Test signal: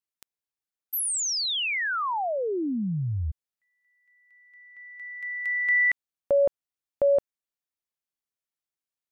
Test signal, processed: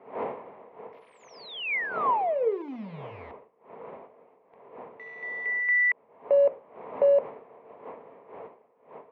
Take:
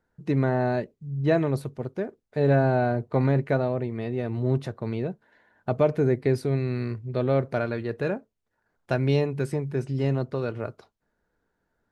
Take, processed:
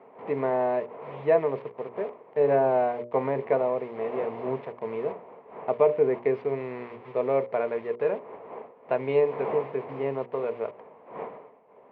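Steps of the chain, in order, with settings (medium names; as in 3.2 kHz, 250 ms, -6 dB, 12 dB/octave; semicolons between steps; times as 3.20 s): send-on-delta sampling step -37.5 dBFS; wind noise 560 Hz -42 dBFS; cabinet simulation 290–2600 Hz, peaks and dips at 320 Hz -8 dB, 450 Hz +10 dB, 660 Hz +4 dB, 1 kHz +9 dB, 1.5 kHz -7 dB, 2.2 kHz +5 dB; hum notches 60/120/180/240/300/360/420/480/540/600 Hz; trim -2.5 dB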